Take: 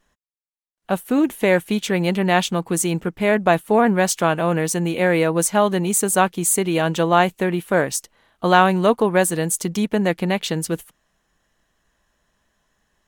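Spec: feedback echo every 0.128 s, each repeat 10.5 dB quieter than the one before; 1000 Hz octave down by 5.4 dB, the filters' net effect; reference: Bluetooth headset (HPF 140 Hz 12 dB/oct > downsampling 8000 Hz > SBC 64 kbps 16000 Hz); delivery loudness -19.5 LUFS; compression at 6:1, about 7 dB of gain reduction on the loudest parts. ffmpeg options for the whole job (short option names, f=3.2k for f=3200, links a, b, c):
-af "equalizer=f=1k:t=o:g=-8,acompressor=threshold=-21dB:ratio=6,highpass=140,aecho=1:1:128|256|384:0.299|0.0896|0.0269,aresample=8000,aresample=44100,volume=7.5dB" -ar 16000 -c:a sbc -b:a 64k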